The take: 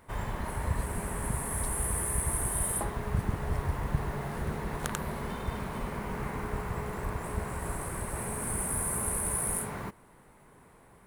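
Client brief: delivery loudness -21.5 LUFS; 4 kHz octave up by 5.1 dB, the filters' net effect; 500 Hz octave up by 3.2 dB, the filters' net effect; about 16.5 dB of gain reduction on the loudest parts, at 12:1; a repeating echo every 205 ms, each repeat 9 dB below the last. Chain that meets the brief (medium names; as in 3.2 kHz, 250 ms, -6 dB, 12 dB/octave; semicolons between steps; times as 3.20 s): peaking EQ 500 Hz +4 dB; peaking EQ 4 kHz +6.5 dB; compression 12:1, threshold -40 dBFS; feedback delay 205 ms, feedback 35%, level -9 dB; trim +22 dB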